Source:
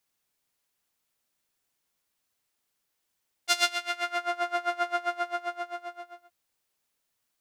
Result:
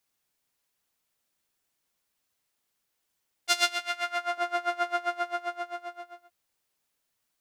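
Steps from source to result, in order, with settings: 3.79–4.38 HPF 450 Hz 12 dB/oct; AAC 192 kbps 44100 Hz

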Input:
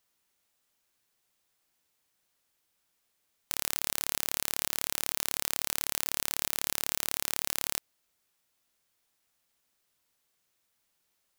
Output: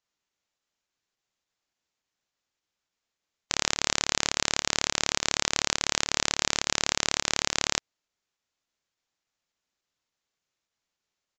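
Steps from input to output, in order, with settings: in parallel at +1 dB: pump 104 bpm, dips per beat 2, -9 dB, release 71 ms; on the sum: downsampling 16000 Hz; upward expander 2.5:1, over -42 dBFS; gain +8 dB

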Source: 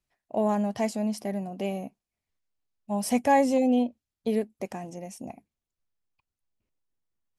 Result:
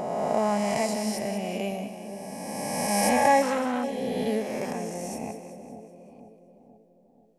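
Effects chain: spectral swells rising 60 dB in 2.17 s; dynamic EQ 300 Hz, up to -5 dB, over -36 dBFS, Q 1.2; on a send: split-band echo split 720 Hz, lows 0.485 s, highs 0.19 s, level -9.5 dB; 3.42–3.84 on the sum: core saturation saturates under 1200 Hz

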